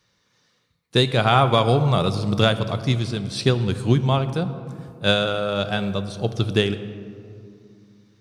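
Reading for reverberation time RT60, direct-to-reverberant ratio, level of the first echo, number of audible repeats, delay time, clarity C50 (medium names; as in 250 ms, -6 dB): 2.4 s, 11.0 dB, no echo, no echo, no echo, 12.0 dB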